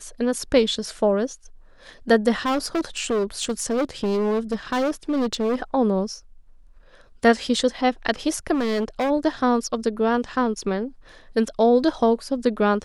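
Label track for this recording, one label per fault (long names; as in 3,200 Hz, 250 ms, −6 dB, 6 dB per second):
2.390000	5.560000	clipping −19 dBFS
8.530000	9.110000	clipping −19.5 dBFS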